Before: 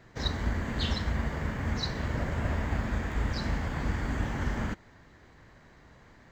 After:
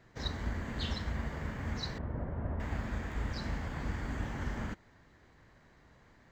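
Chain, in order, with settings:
0:01.98–0:02.60: low-pass filter 1,000 Hz 12 dB per octave
level −6 dB

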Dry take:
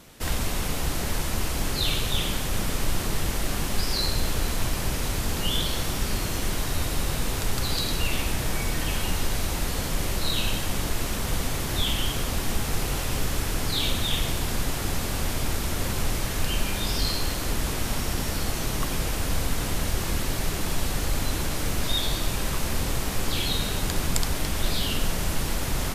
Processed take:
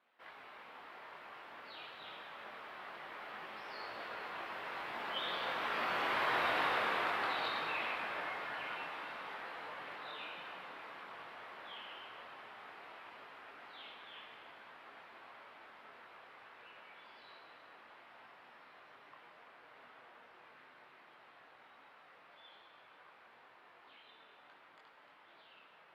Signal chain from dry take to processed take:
source passing by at 0:06.44, 20 m/s, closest 11 metres
high-pass filter 970 Hz 12 dB per octave
parametric band 8,700 Hz −9 dB 2.6 octaves
multi-voice chorus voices 6, 0.21 Hz, delay 22 ms, depth 4.9 ms
high-frequency loss of the air 450 metres
convolution reverb RT60 3.6 s, pre-delay 117 ms, DRR 6.5 dB
level +13.5 dB

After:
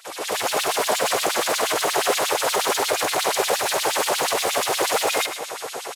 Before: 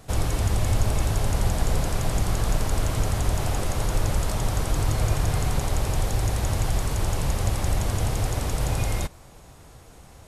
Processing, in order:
high-pass filter 160 Hz 6 dB per octave
in parallel at −1 dB: downward compressor, threshold −37 dBFS, peak gain reduction 13 dB
on the sum: brickwall limiter −23.5 dBFS, peak gain reduction 11.5 dB
automatic gain control gain up to 15.5 dB
hard clipping −15 dBFS, distortion −13 dB
auto-filter high-pass sine 4.9 Hz 390–4,000 Hz
phase-vocoder stretch with locked phases 0.58×
repeating echo 108 ms, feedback 29%, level −10.5 dB

